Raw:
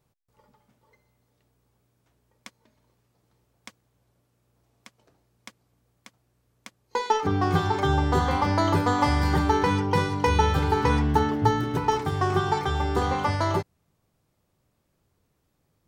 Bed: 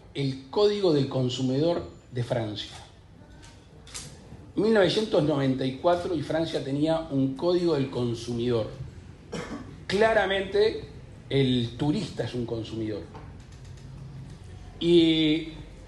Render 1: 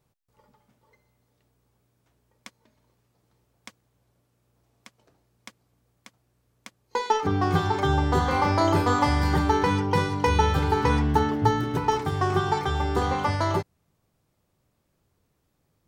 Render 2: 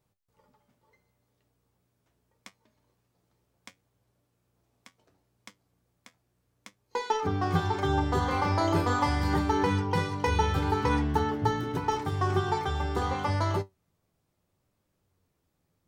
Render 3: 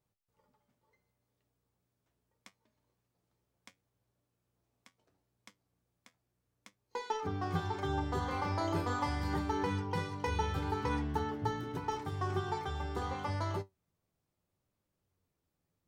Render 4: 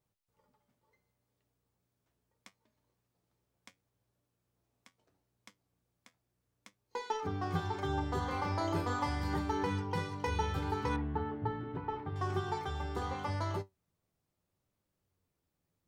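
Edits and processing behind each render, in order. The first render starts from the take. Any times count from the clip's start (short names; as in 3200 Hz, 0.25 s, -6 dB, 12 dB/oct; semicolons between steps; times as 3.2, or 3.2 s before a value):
8.25–8.99 flutter echo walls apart 5.7 m, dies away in 0.34 s
flange 0.74 Hz, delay 9.7 ms, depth 2.4 ms, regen +63%
gain -8 dB
10.96–12.16 air absorption 460 m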